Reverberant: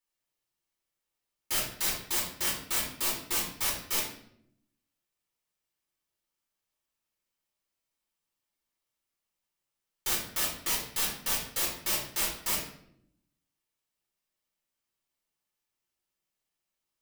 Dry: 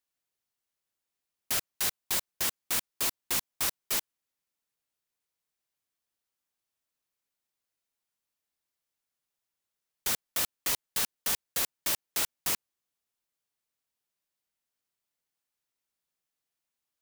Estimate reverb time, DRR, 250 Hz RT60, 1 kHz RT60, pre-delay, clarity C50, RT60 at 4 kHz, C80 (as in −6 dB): 0.70 s, −4.0 dB, 1.1 s, 0.60 s, 3 ms, 4.5 dB, 0.50 s, 8.5 dB